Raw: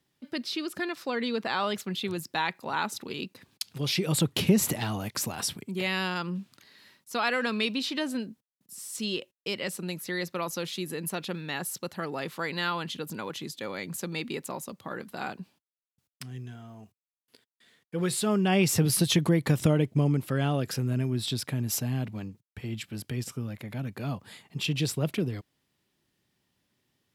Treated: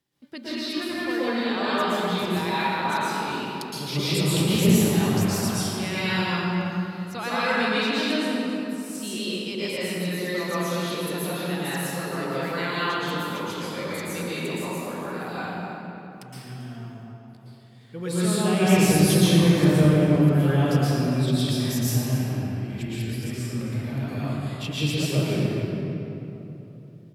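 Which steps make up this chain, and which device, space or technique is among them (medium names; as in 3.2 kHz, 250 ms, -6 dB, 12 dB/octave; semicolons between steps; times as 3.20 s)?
cave (delay 278 ms -14 dB; reverberation RT60 3.3 s, pre-delay 109 ms, DRR -10.5 dB); trim -5.5 dB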